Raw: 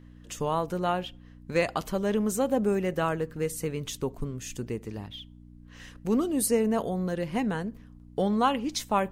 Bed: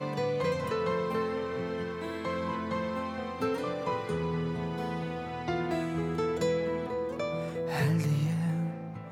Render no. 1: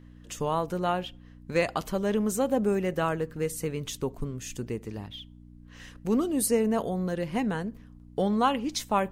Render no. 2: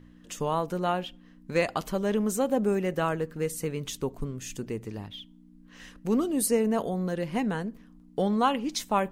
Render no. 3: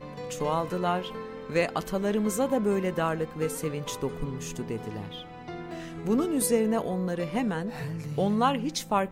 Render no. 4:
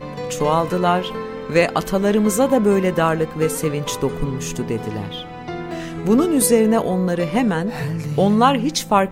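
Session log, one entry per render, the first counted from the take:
no audible change
de-hum 60 Hz, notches 2
add bed -7.5 dB
trim +10 dB; peak limiter -3 dBFS, peak gain reduction 1.5 dB

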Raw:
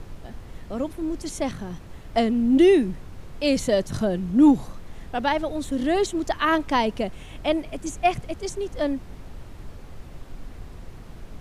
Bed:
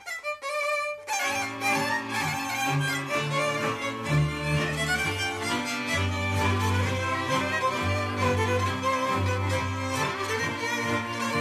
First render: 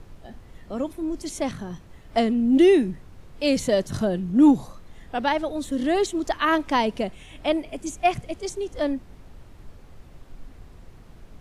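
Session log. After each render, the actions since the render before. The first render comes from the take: noise print and reduce 6 dB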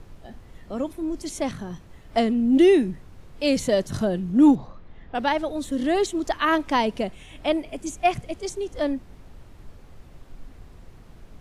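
4.55–5.15 s: distance through air 260 m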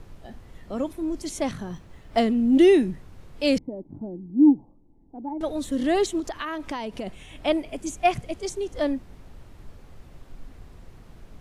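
1.72–2.34 s: median filter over 3 samples; 3.58–5.41 s: cascade formant filter u; 6.20–7.07 s: compression 10:1, threshold -27 dBFS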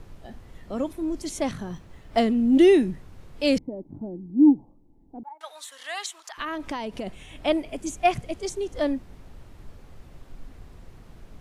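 5.23–6.38 s: high-pass 940 Hz 24 dB/octave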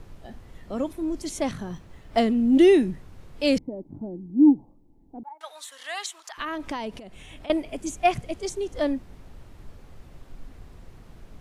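6.97–7.50 s: compression 10:1, threshold -38 dBFS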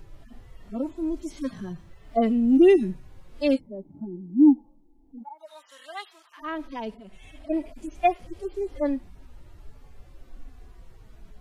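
harmonic-percussive separation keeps harmonic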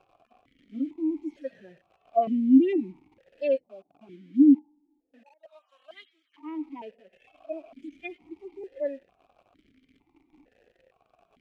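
in parallel at -5 dB: bit crusher 7-bit; on the sum: stepped vowel filter 2.2 Hz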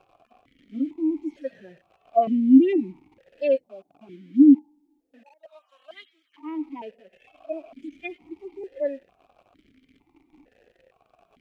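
trim +3.5 dB

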